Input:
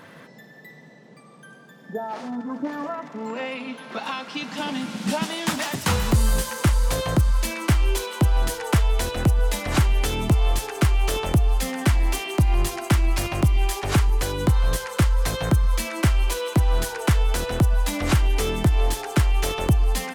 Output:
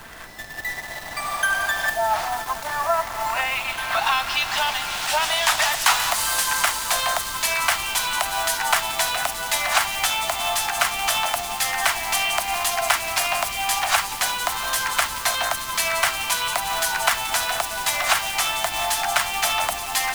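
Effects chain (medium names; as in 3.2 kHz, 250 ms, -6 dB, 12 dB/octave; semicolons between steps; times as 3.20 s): block-companded coder 5-bit; recorder AGC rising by 14 dB/s; elliptic high-pass 670 Hz, stop band 40 dB; added noise pink -50 dBFS; in parallel at -5.5 dB: word length cut 6-bit, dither none; on the sum: feedback echo behind a high-pass 176 ms, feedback 84%, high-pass 3.1 kHz, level -12 dB; trim +4.5 dB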